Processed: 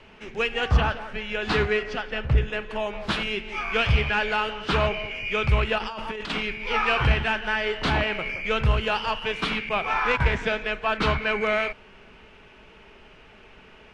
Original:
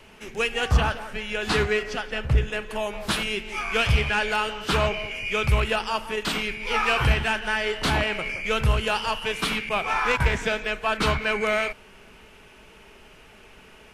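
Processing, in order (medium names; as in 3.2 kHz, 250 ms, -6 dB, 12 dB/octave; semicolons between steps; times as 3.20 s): 5.78–6.30 s: compressor with a negative ratio -32 dBFS, ratio -1; low-pass 4 kHz 12 dB/octave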